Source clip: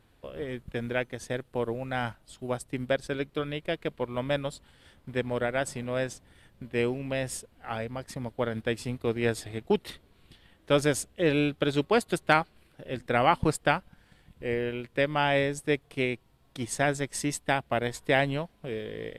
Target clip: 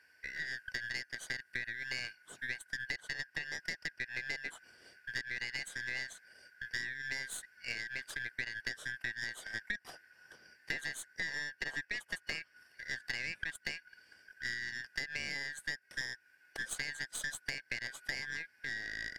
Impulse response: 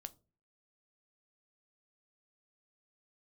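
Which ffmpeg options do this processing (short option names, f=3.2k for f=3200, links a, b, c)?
-filter_complex "[0:a]afftfilt=real='real(if(lt(b,272),68*(eq(floor(b/68),0)*2+eq(floor(b/68),1)*0+eq(floor(b/68),2)*3+eq(floor(b/68),3)*1)+mod(b,68),b),0)':imag='imag(if(lt(b,272),68*(eq(floor(b/68),0)*2+eq(floor(b/68),1)*0+eq(floor(b/68),2)*3+eq(floor(b/68),3)*1)+mod(b,68),b),0)':win_size=2048:overlap=0.75,highpass=77,acrossover=split=1500[a][b];[b]alimiter=limit=-17.5dB:level=0:latency=1:release=108[c];[a][c]amix=inputs=2:normalize=0,acompressor=threshold=-34dB:ratio=12,aeval=exprs='0.106*(cos(1*acos(clip(val(0)/0.106,-1,1)))-cos(1*PI/2))+0.015*(cos(4*acos(clip(val(0)/0.106,-1,1)))-cos(4*PI/2))+0.00299*(cos(7*acos(clip(val(0)/0.106,-1,1)))-cos(7*PI/2))':c=same,volume=-1dB"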